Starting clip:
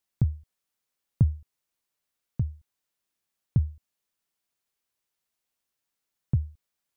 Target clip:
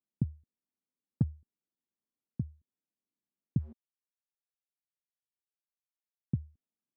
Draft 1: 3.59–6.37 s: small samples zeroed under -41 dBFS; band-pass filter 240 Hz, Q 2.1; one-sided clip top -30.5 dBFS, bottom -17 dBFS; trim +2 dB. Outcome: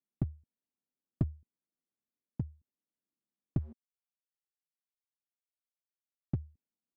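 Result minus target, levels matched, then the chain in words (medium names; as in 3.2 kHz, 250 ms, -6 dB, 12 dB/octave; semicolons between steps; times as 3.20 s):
one-sided clip: distortion +12 dB
3.59–6.37 s: small samples zeroed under -41 dBFS; band-pass filter 240 Hz, Q 2.1; one-sided clip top -19.5 dBFS, bottom -17 dBFS; trim +2 dB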